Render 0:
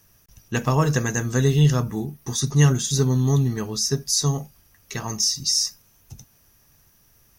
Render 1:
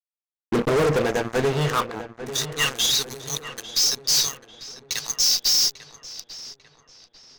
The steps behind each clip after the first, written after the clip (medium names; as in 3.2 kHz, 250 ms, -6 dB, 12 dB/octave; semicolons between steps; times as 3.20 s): band-pass sweep 360 Hz -> 4.5 kHz, 0.57–3.20 s; fuzz box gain 38 dB, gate -44 dBFS; filtered feedback delay 845 ms, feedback 50%, low-pass 3 kHz, level -12.5 dB; trim -4 dB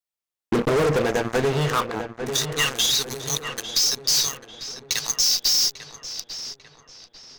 compression, threshold -23 dBFS, peak gain reduction 5.5 dB; trim +4.5 dB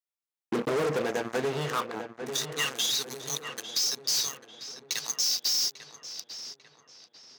high-pass 170 Hz 12 dB/octave; trim -7 dB